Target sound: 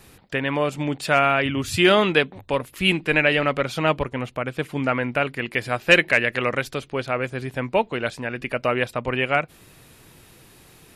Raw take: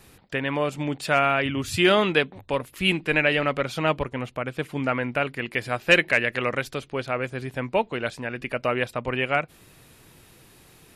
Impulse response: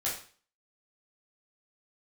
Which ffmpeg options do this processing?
-af "volume=1.33"

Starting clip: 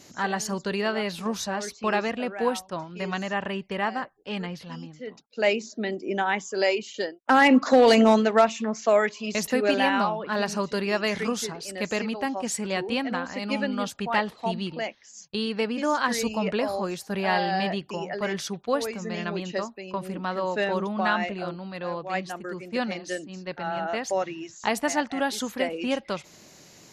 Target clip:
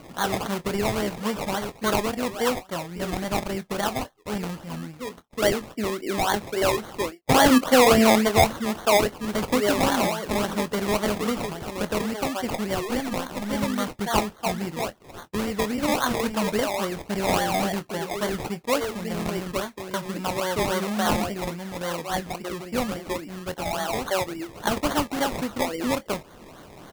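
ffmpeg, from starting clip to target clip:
-filter_complex "[0:a]asettb=1/sr,asplit=3[s0][s1][s2];[s0]atrim=end=12.854[s3];[s1]atrim=start=12.85:end=13.55,asetpts=PTS-STARTPTS,afade=t=in:d=0.004:c=qsin,afade=t=out:st=0.696:d=0.004:c=qsin,aeval=exprs='if(lt(val(0),0),0.708*val(0),val(0))':c=same[s4];[s2]atrim=start=13.546[s5];[s3][s4]acrossfade=d=0.004:c1=hsin:c2=qsin[s6];[s6][s5]acrossfade=d=0.004:c1=qsin:c2=hsin,acrusher=samples=24:mix=1:aa=0.000001:lfo=1:lforange=14.4:lforate=3.6,asplit=2[s7][s8];[s8]adelay=24,volume=0.211[s9];[s7][s9]amix=inputs=2:normalize=0,asplit=2[s10][s11];[s11]acompressor=threshold=0.00891:ratio=6,volume=1[s12];[s10][s12]amix=inputs=2:normalize=0"

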